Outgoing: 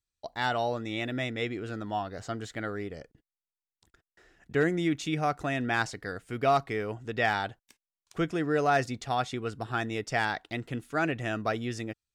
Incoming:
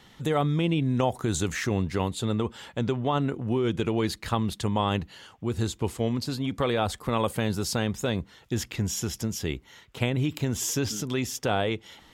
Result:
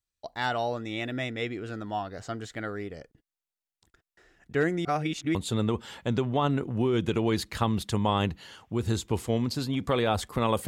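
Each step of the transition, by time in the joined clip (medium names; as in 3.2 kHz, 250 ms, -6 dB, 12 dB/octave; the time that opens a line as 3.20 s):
outgoing
4.85–5.35 s: reverse
5.35 s: go over to incoming from 2.06 s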